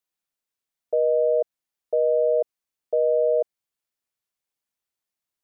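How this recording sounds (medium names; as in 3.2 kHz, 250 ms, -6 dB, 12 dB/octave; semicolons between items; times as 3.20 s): noise floor -88 dBFS; spectral tilt +9.5 dB/octave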